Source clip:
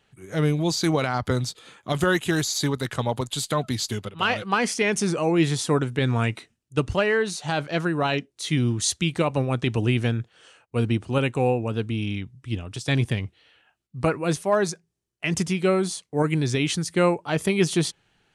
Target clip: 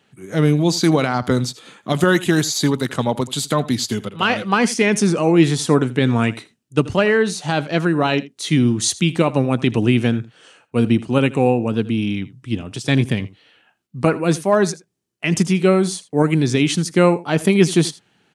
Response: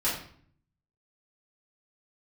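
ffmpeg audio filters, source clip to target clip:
-filter_complex "[0:a]highpass=120,equalizer=f=230:t=o:w=1.2:g=5.5,asplit=2[s0][s1];[s1]aecho=0:1:81:0.119[s2];[s0][s2]amix=inputs=2:normalize=0,volume=1.68"

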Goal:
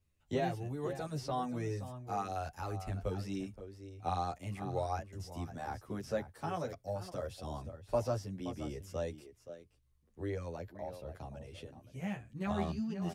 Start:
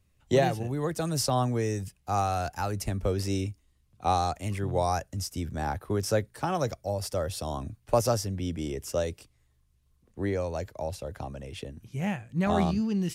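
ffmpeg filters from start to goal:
-filter_complex "[0:a]asettb=1/sr,asplit=3[s0][s1][s2];[s0]atrim=end=10.554[s3];[s1]atrim=start=10.55:end=11.09,asetpts=PTS-STARTPTS,afade=t=in:d=0.004:c=qsin,afade=t=out:st=0.536:d=0.004:c=qsin,equalizer=f=7200:t=o:w=1.1:g=-10.5[s4];[s2]atrim=start=11.086[s5];[s3][s4]acrossfade=d=0.004:c1=hsin:c2=qsin[s6];[s6][s5]acrossfade=d=0.004:c1=qsin:c2=hsin,asplit=2[s7][s8];[s8]adelay=524.8,volume=0.282,highshelf=f=4000:g=-11.8[s9];[s7][s9]amix=inputs=2:normalize=0,acrossover=split=4000[s10][s11];[s11]acompressor=threshold=0.00501:ratio=4:attack=1:release=60[s12];[s10][s12]amix=inputs=2:normalize=0,asplit=2[s13][s14];[s14]adelay=10.3,afreqshift=0.79[s15];[s13][s15]amix=inputs=2:normalize=1,volume=0.473"

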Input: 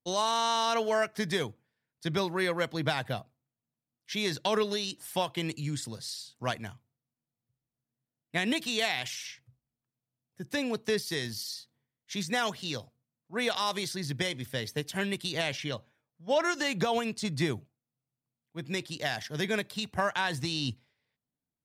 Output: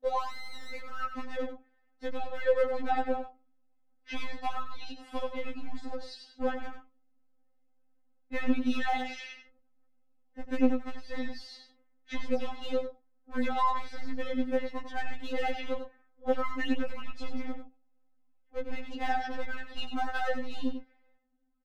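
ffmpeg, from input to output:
-filter_complex "[0:a]lowpass=1400,lowshelf=f=350:g=7,aeval=exprs='0.224*(cos(1*acos(clip(val(0)/0.224,-1,1)))-cos(1*PI/2))+0.00794*(cos(4*acos(clip(val(0)/0.224,-1,1)))-cos(4*PI/2))+0.00794*(cos(6*acos(clip(val(0)/0.224,-1,1)))-cos(6*PI/2))':c=same,aecho=1:1:2.4:0.45,asplit=2[s0][s1];[s1]alimiter=limit=0.0891:level=0:latency=1,volume=0.708[s2];[s0][s2]amix=inputs=2:normalize=0,acompressor=threshold=0.0282:ratio=12,asubboost=boost=3:cutoff=110,volume=28.2,asoftclip=hard,volume=0.0355,asplit=2[s3][s4];[s4]aecho=0:1:95:0.355[s5];[s3][s5]amix=inputs=2:normalize=0,afftfilt=real='re*3.46*eq(mod(b,12),0)':imag='im*3.46*eq(mod(b,12),0)':win_size=2048:overlap=0.75,volume=2.66"

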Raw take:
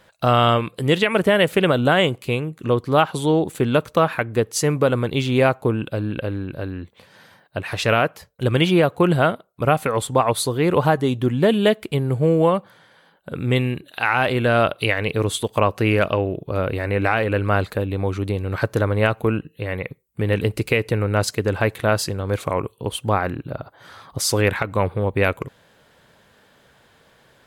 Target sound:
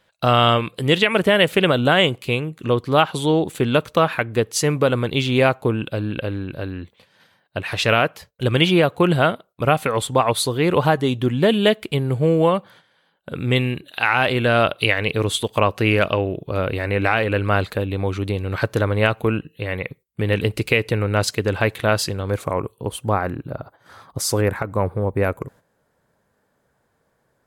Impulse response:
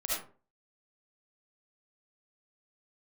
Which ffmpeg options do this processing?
-af "asetnsamples=n=441:p=0,asendcmd='22.32 equalizer g -5.5;24.41 equalizer g -13.5',equalizer=f=3200:t=o:w=1.3:g=4.5,agate=range=0.316:threshold=0.00562:ratio=16:detection=peak"

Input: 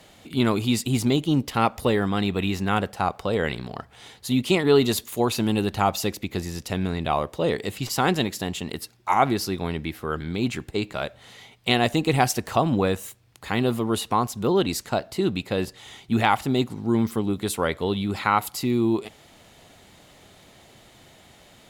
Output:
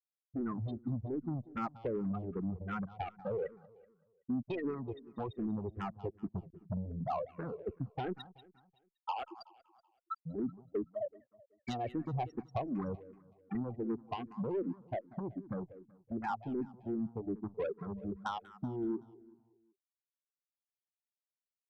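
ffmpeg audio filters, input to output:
-filter_complex "[0:a]asplit=3[s0][s1][s2];[s0]afade=t=out:st=8.12:d=0.02[s3];[s1]highpass=650,afade=t=in:st=8.12:d=0.02,afade=t=out:st=10.17:d=0.02[s4];[s2]afade=t=in:st=10.17:d=0.02[s5];[s3][s4][s5]amix=inputs=3:normalize=0,afftfilt=real='re*gte(hypot(re,im),0.251)':imag='im*gte(hypot(re,im),0.251)':win_size=1024:overlap=0.75,adynamicequalizer=threshold=0.00398:dfrequency=3600:dqfactor=1.2:tfrequency=3600:tqfactor=1.2:attack=5:release=100:ratio=0.375:range=3:mode=cutabove:tftype=bell,acompressor=threshold=0.0316:ratio=6,asoftclip=type=tanh:threshold=0.0335,aecho=1:1:189|378|567|756:0.126|0.0579|0.0266|0.0123,asplit=2[s6][s7];[s7]afreqshift=-2.6[s8];[s6][s8]amix=inputs=2:normalize=1,volume=1.19"

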